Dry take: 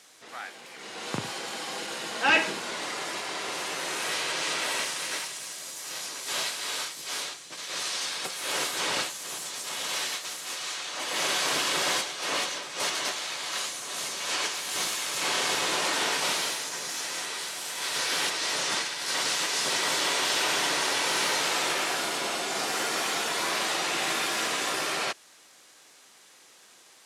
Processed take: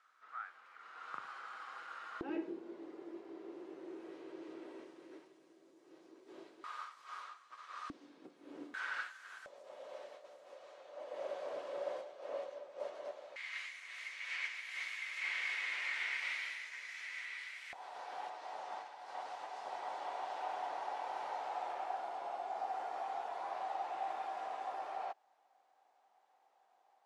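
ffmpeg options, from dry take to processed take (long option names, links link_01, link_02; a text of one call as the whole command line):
ffmpeg -i in.wav -af "asetnsamples=nb_out_samples=441:pad=0,asendcmd='2.21 bandpass f 340;6.64 bandpass f 1200;7.9 bandpass f 290;8.74 bandpass f 1500;9.46 bandpass f 570;13.36 bandpass f 2100;17.73 bandpass f 770',bandpass=frequency=1300:width_type=q:width=7.6:csg=0" out.wav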